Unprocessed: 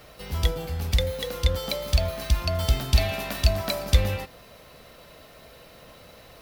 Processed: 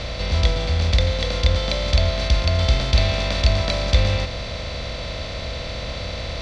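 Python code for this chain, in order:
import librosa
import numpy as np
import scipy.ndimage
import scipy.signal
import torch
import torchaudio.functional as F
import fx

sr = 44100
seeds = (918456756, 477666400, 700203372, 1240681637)

y = fx.bin_compress(x, sr, power=0.4)
y = scipy.signal.sosfilt(scipy.signal.butter(4, 6100.0, 'lowpass', fs=sr, output='sos'), y)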